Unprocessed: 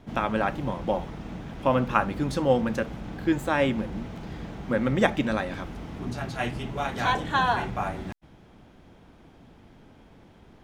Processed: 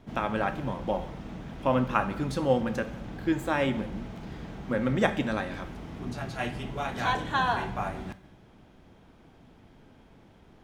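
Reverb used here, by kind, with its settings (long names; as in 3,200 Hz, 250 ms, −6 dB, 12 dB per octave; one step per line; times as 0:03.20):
reverb whose tail is shaped and stops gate 290 ms falling, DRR 10.5 dB
level −3 dB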